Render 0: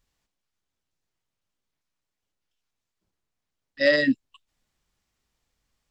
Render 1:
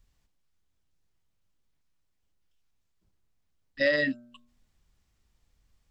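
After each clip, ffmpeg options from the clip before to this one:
-filter_complex "[0:a]lowshelf=f=160:g=12,bandreject=f=120:t=h:w=4,bandreject=f=240:t=h:w=4,bandreject=f=360:t=h:w=4,bandreject=f=480:t=h:w=4,bandreject=f=600:t=h:w=4,bandreject=f=720:t=h:w=4,bandreject=f=840:t=h:w=4,bandreject=f=960:t=h:w=4,bandreject=f=1080:t=h:w=4,bandreject=f=1200:t=h:w=4,bandreject=f=1320:t=h:w=4,bandreject=f=1440:t=h:w=4,bandreject=f=1560:t=h:w=4,acrossover=split=530|4100[s0][s1][s2];[s0]acompressor=threshold=0.02:ratio=4[s3];[s1]acompressor=threshold=0.0708:ratio=4[s4];[s2]acompressor=threshold=0.00501:ratio=4[s5];[s3][s4][s5]amix=inputs=3:normalize=0"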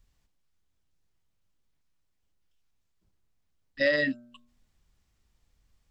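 -af anull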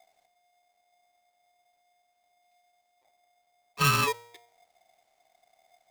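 -af "aeval=exprs='val(0)*sgn(sin(2*PI*710*n/s))':c=same,volume=1.12"

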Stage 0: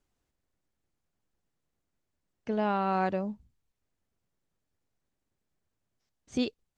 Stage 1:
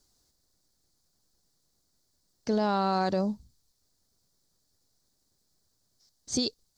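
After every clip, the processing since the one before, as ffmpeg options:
-af "highshelf=f=3500:t=q:w=3:g=9,alimiter=limit=0.0668:level=0:latency=1:release=48,volume=1.88"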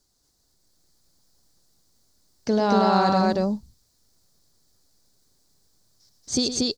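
-af "dynaudnorm=f=350:g=3:m=1.78,aecho=1:1:110.8|233.2:0.316|0.891"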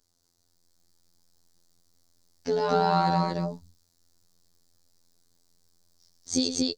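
-af "afftfilt=real='hypot(re,im)*cos(PI*b)':imag='0':win_size=2048:overlap=0.75,adynamicequalizer=threshold=0.00794:dfrequency=3400:dqfactor=0.7:tfrequency=3400:tqfactor=0.7:attack=5:release=100:ratio=0.375:range=1.5:mode=cutabove:tftype=highshelf"

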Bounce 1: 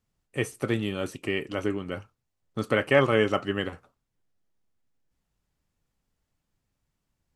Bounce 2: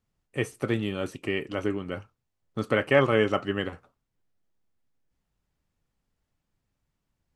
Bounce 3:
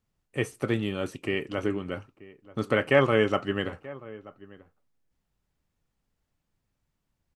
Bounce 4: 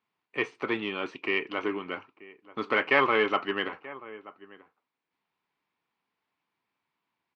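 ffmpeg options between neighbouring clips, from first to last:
-af "highshelf=f=5400:g=-5.5"
-filter_complex "[0:a]asplit=2[s0][s1];[s1]adelay=932.9,volume=0.112,highshelf=f=4000:g=-21[s2];[s0][s2]amix=inputs=2:normalize=0"
-filter_complex "[0:a]asplit=2[s0][s1];[s1]aeval=exprs='0.0891*(abs(mod(val(0)/0.0891+3,4)-2)-1)':c=same,volume=0.251[s2];[s0][s2]amix=inputs=2:normalize=0,highpass=350,equalizer=f=560:t=q:w=4:g=-8,equalizer=f=1000:t=q:w=4:g=8,equalizer=f=2300:t=q:w=4:g=6,lowpass=f=4300:w=0.5412,lowpass=f=4300:w=1.3066"

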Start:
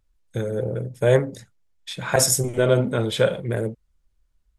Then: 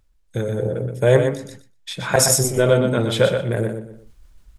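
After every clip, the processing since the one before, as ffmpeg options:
-af "aecho=1:1:122|244|366:0.473|0.0757|0.0121,areverse,acompressor=mode=upward:threshold=0.02:ratio=2.5,areverse,volume=1.33"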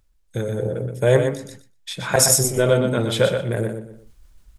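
-af "highshelf=f=5600:g=4,volume=0.841"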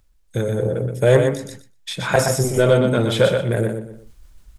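-filter_complex "[0:a]acrossover=split=3000[s0][s1];[s1]acompressor=threshold=0.0355:ratio=4:attack=1:release=60[s2];[s0][s2]amix=inputs=2:normalize=0,asplit=2[s3][s4];[s4]asoftclip=type=tanh:threshold=0.2,volume=0.708[s5];[s3][s5]amix=inputs=2:normalize=0,volume=0.891"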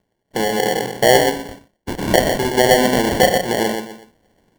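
-filter_complex "[0:a]highpass=f=200:w=0.5412,highpass=f=200:w=1.3066,asplit=2[s0][s1];[s1]alimiter=limit=0.251:level=0:latency=1:release=498,volume=0.708[s2];[s0][s2]amix=inputs=2:normalize=0,acrusher=samples=35:mix=1:aa=0.000001"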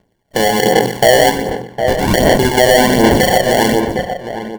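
-filter_complex "[0:a]asplit=2[s0][s1];[s1]adelay=758,volume=0.316,highshelf=f=4000:g=-17.1[s2];[s0][s2]amix=inputs=2:normalize=0,aphaser=in_gain=1:out_gain=1:delay=1.7:decay=0.42:speed=1.3:type=sinusoidal,alimiter=level_in=2.24:limit=0.891:release=50:level=0:latency=1,volume=0.891"

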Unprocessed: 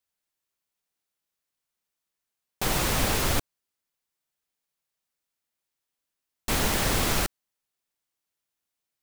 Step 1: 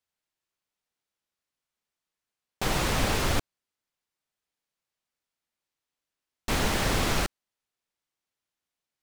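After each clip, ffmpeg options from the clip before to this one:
-af "highshelf=f=9400:g=-12"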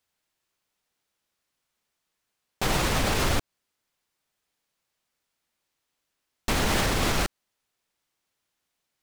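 -af "alimiter=limit=0.075:level=0:latency=1:release=126,volume=2.51"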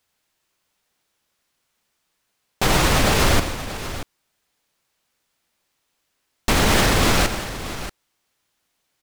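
-af "aecho=1:1:86|150|633:0.237|0.2|0.237,volume=2.24"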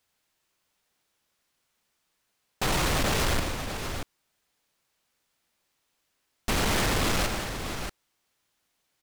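-af "asoftclip=type=tanh:threshold=0.112,volume=0.708"

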